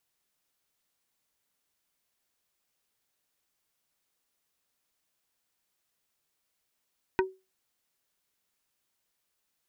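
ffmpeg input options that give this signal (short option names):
-f lavfi -i "aevalsrc='0.106*pow(10,-3*t/0.26)*sin(2*PI*378*t)+0.0794*pow(10,-3*t/0.087)*sin(2*PI*945*t)+0.0596*pow(10,-3*t/0.049)*sin(2*PI*1512*t)+0.0447*pow(10,-3*t/0.038)*sin(2*PI*1890*t)+0.0335*pow(10,-3*t/0.028)*sin(2*PI*2457*t)':d=0.45:s=44100"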